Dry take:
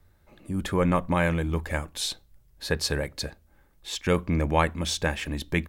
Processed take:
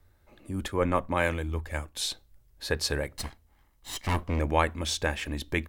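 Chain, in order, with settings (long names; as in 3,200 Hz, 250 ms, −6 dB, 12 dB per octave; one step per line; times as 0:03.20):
0:03.17–0:04.40: lower of the sound and its delayed copy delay 0.99 ms
parametric band 170 Hz −10.5 dB 0.3 octaves
0:00.68–0:01.97: multiband upward and downward expander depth 70%
level −1.5 dB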